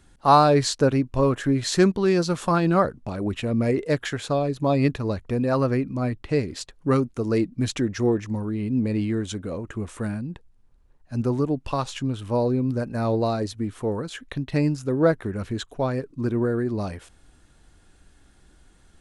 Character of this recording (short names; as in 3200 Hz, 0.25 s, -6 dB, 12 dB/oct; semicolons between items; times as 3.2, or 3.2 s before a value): noise floor -57 dBFS; spectral tilt -6.5 dB/oct